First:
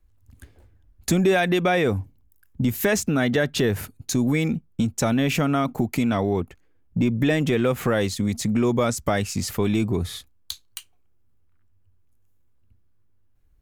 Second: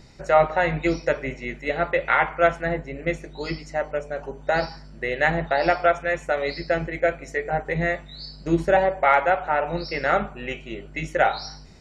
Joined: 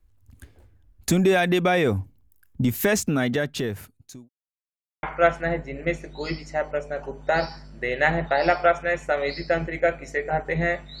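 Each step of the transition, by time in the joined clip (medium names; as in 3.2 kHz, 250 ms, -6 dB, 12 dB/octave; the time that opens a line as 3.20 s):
first
2.98–4.29 s: fade out linear
4.29–5.03 s: mute
5.03 s: go over to second from 2.23 s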